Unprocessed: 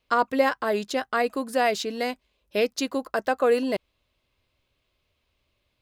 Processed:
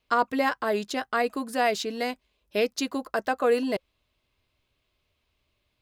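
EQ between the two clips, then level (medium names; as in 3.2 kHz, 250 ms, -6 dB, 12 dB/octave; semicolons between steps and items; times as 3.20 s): band-stop 530 Hz, Q 12; -1.0 dB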